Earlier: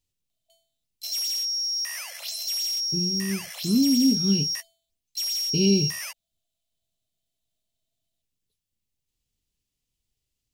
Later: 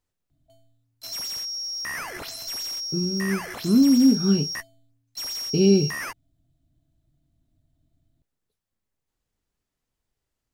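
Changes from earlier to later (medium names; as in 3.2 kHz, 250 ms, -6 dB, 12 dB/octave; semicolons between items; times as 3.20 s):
background: remove steep high-pass 530 Hz 96 dB/octave; master: add FFT filter 120 Hz 0 dB, 1.5 kHz +13 dB, 2.8 kHz -4 dB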